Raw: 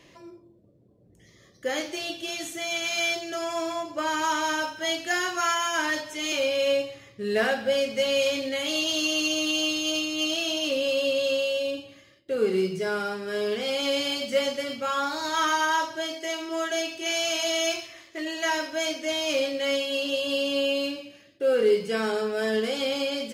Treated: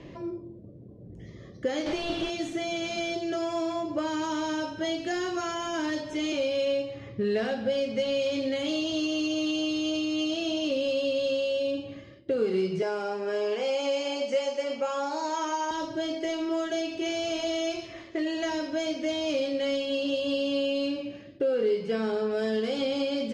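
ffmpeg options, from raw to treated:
-filter_complex "[0:a]asettb=1/sr,asplit=3[a][b][c];[a]atrim=end=1.864[d];[b]atrim=start=1.86:end=2.3,asetpts=PTS-STARTPTS,afade=t=in:d=0.004:c=qsin,afade=t=out:st=0.436:d=0.004:c=qsin,asplit=2[e][f];[f]highpass=f=720:p=1,volume=31dB,asoftclip=type=tanh:threshold=-21.5dB[g];[e][g]amix=inputs=2:normalize=0,lowpass=f=2.1k:p=1,volume=-6dB[h];[c]atrim=start=2.296[i];[d][h]acrossfade=d=0.004:c1=hsin:c2=qsin[j];[j][i]acrossfade=d=0.004:c1=qsin:c2=hsin,asettb=1/sr,asplit=3[k][l][m];[k]atrim=end=6.654[n];[l]atrim=start=6.65:end=8.32,asetpts=PTS-STARTPTS,afade=t=in:d=0.004:c=qsin,afade=t=out:st=1.666:d=0.004:c=qsin,highshelf=f=6.9k:g=-6[o];[m]atrim=start=8.316[p];[n][o]acrossfade=d=0.004:c1=hsin:c2=qsin[q];[q][p]acrossfade=d=0.004:c1=qsin:c2=hsin,asettb=1/sr,asplit=3[r][s][t];[r]atrim=end=12.824[u];[s]atrim=start=12.82:end=15.71,asetpts=PTS-STARTPTS,afade=t=in:d=0.004:c=qsin,afade=t=out:st=2.886:d=0.004:c=qsin,highpass=410,equalizer=f=560:t=q:w=4:g=4,equalizer=f=900:t=q:w=4:g=10,equalizer=f=2.6k:t=q:w=4:g=5,equalizer=f=3.7k:t=q:w=4:g=-9,equalizer=f=6.6k:t=q:w=4:g=6,lowpass=f=9.6k:w=0.5412,lowpass=f=9.6k:w=1.3066[v];[t]atrim=start=15.706[w];[u][v]acrossfade=d=0.004:c1=hsin:c2=qsin[x];[x][w]acrossfade=d=0.004:c1=qsin:c2=hsin,asettb=1/sr,asplit=3[y][z][aa];[y]atrim=end=21.444[ab];[z]atrim=start=21.44:end=22.31,asetpts=PTS-STARTPTS,afade=t=in:d=0.004:c=qsin,afade=t=out:st=0.866:d=0.004:c=qsin,highshelf=f=4.6k:g=-7[ac];[aa]atrim=start=22.306[ad];[ab][ac]acrossfade=d=0.004:c1=hsin:c2=qsin[ae];[ae][ad]acrossfade=d=0.004:c1=qsin:c2=hsin,acrossover=split=590|3500[af][ag][ah];[af]acompressor=threshold=-42dB:ratio=4[ai];[ag]acompressor=threshold=-42dB:ratio=4[aj];[ah]acompressor=threshold=-35dB:ratio=4[ak];[ai][aj][ak]amix=inputs=3:normalize=0,lowpass=4.7k,tiltshelf=f=760:g=7.5,volume=7dB"

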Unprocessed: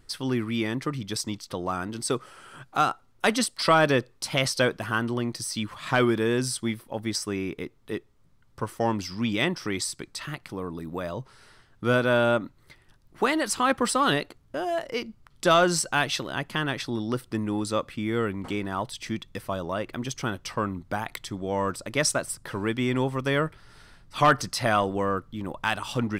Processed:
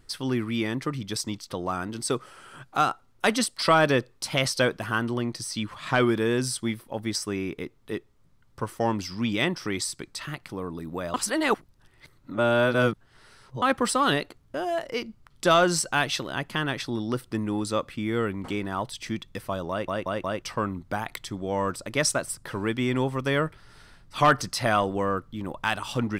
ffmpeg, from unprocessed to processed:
-filter_complex "[0:a]asettb=1/sr,asplit=3[a][b][c];[a]atrim=end=5.224[d];[b]atrim=start=5.22:end=6.06,asetpts=PTS-STARTPTS,afade=t=in:d=0.004:c=qsin,afade=t=out:st=0.836:d=0.004:c=qsin,highshelf=f=11k:g=-7[e];[c]atrim=start=6.056[f];[d][e]acrossfade=d=0.004:c1=hsin:c2=qsin[g];[g][f]acrossfade=d=0.004:c1=qsin:c2=hsin,asplit=7[h][i][j][k][l][m][n];[h]atrim=end=11.142[o];[i]atrim=start=11.138:end=13.622,asetpts=PTS-STARTPTS,areverse[p];[j]atrim=start=13.618:end=19.882[q];[k]atrim=start=19.698:end=19.882[r];[l]atrim=start=19.698:end=19.882[s];[m]atrim=start=19.698:end=19.882[t];[n]atrim=start=20.418[u];[o][p]acrossfade=d=0.004:c1=hsin:c2=hsin[v];[v][q]acrossfade=d=0.004:c1=hsin:c2=hsin[w];[w][r]acrossfade=d=0.004:c1=hsin:c2=hsin[x];[x][s]acrossfade=d=0.004:c1=hsin:c2=hsin[y];[y][t]acrossfade=d=0.004:c1=hsin:c2=hsin[z];[z][u]acrossfade=d=0.004:c1=hsin:c2=hsin"

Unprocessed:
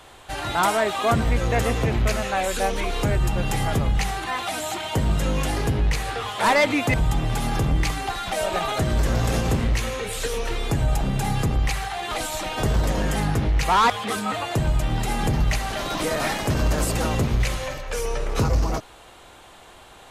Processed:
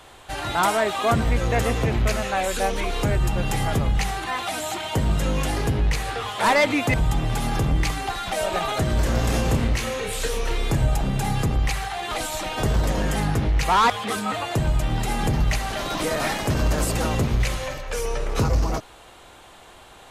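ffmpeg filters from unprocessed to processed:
-filter_complex "[0:a]asettb=1/sr,asplit=3[a][b][c];[a]atrim=end=8.954[d];[b]atrim=start=8.95:end=10.89,asetpts=PTS-STARTPTS,afade=t=in:d=0.004:c=qsin,afade=t=out:st=1.936:d=0.004:c=qsin,asplit=2[e][f];[f]adelay=31,volume=-7dB[g];[e][g]amix=inputs=2:normalize=0,atrim=end_sample=85554[h];[c]atrim=start=10.886[i];[d][h]acrossfade=d=0.004:c1=hsin:c2=qsin[j];[j][i]acrossfade=d=0.004:c1=qsin:c2=hsin"

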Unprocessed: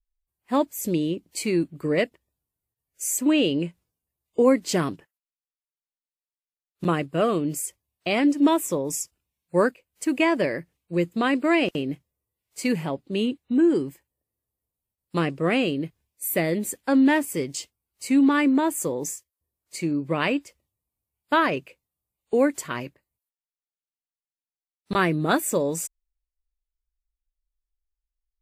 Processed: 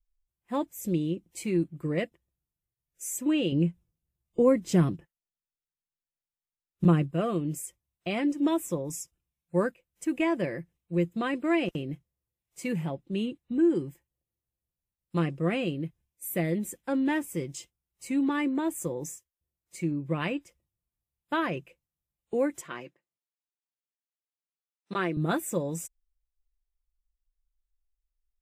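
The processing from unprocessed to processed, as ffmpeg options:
-filter_complex "[0:a]asettb=1/sr,asplit=3[a][b][c];[a]atrim=end=3.524[d];[b]atrim=start=3.52:end=7.11,asetpts=PTS-STARTPTS,afade=t=in:d=0.004:c=qsin,afade=t=out:st=3.586:d=0.004:c=qsin,lowshelf=f=330:g=8[e];[c]atrim=start=7.106[f];[d][e]acrossfade=d=0.004:c1=hsin:c2=qsin[g];[g][f]acrossfade=d=0.004:c1=qsin:c2=hsin,asettb=1/sr,asplit=3[h][i][j];[h]atrim=end=22.614[k];[i]atrim=start=22.61:end=25.17,asetpts=PTS-STARTPTS,afade=t=in:d=0.004:c=qsin,afade=t=out:st=2.556:d=0.004:c=qsin,highpass=280,lowpass=7.6k[l];[j]atrim=start=25.166[m];[k][l]acrossfade=d=0.004:c1=hsin:c2=qsin[n];[n][m]acrossfade=d=0.004:c1=qsin:c2=hsin,lowshelf=f=180:g=11,bandreject=f=4.5k:w=6.3,aecho=1:1:5.8:0.4,volume=-9dB"

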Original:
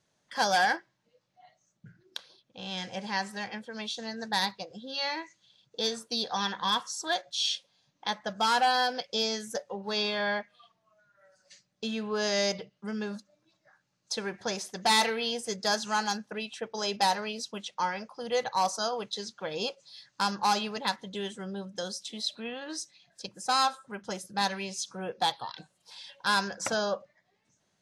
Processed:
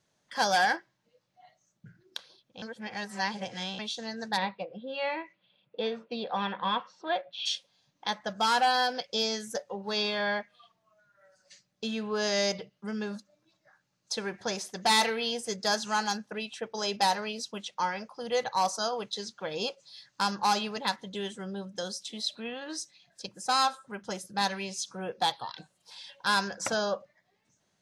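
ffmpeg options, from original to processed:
-filter_complex "[0:a]asplit=3[a][b][c];[a]afade=t=out:st=4.36:d=0.02[d];[b]highpass=150,equalizer=f=180:t=q:w=4:g=4,equalizer=f=550:t=q:w=4:g=7,equalizer=f=1.7k:t=q:w=4:g=-4,equalizer=f=2.5k:t=q:w=4:g=5,lowpass=f=2.9k:w=0.5412,lowpass=f=2.9k:w=1.3066,afade=t=in:st=4.36:d=0.02,afade=t=out:st=7.45:d=0.02[e];[c]afade=t=in:st=7.45:d=0.02[f];[d][e][f]amix=inputs=3:normalize=0,asplit=3[g][h][i];[g]atrim=end=2.622[j];[h]atrim=start=2.618:end=3.792,asetpts=PTS-STARTPTS,areverse[k];[i]atrim=start=3.788[l];[j][k]acrossfade=d=0.004:c1=hsin:c2=hsin[m];[m][l]acrossfade=d=0.004:c1=hsin:c2=hsin"

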